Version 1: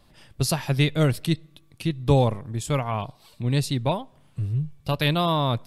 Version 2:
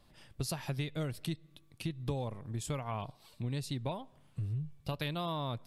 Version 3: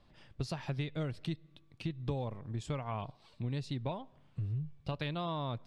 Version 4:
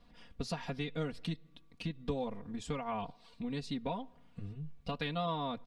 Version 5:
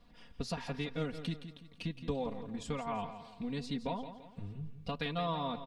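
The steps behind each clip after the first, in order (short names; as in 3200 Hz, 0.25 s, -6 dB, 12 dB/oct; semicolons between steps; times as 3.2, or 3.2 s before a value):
compressor 6:1, threshold -26 dBFS, peak gain reduction 12.5 dB; gain -6.5 dB
air absorption 110 m
comb 4.2 ms, depth 99%; gain -1 dB
feedback echo 0.169 s, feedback 41%, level -11 dB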